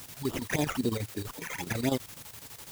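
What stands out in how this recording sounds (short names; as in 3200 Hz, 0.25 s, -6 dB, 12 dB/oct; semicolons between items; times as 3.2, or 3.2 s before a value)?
aliases and images of a low sample rate 4200 Hz, jitter 0%; phasing stages 12, 3.8 Hz, lowest notch 270–2100 Hz; a quantiser's noise floor 8-bit, dither triangular; chopped level 12 Hz, depth 65%, duty 70%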